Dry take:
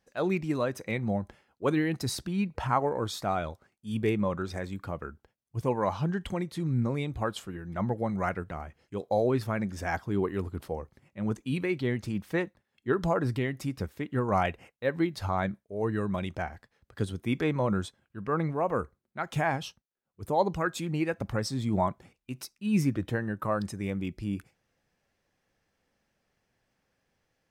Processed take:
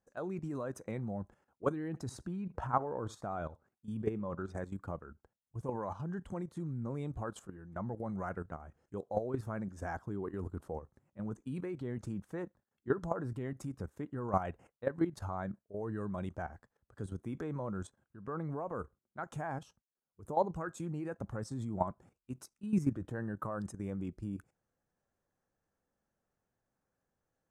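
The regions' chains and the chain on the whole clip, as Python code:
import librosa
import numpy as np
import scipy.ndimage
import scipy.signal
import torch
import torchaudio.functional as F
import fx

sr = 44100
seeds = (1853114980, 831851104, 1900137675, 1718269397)

y = fx.chain(x, sr, fx.high_shelf(hz=7000.0, db=-9.5),
    fx.echo_single(ms=77, db=-22.5), at=(1.88, 4.57))
y = scipy.signal.sosfilt(scipy.signal.butter(2, 9100.0, 'lowpass', fs=sr, output='sos'), y)
y = fx.band_shelf(y, sr, hz=3200.0, db=-12.0, octaves=1.7)
y = fx.level_steps(y, sr, step_db=12)
y = F.gain(torch.from_numpy(y), -2.0).numpy()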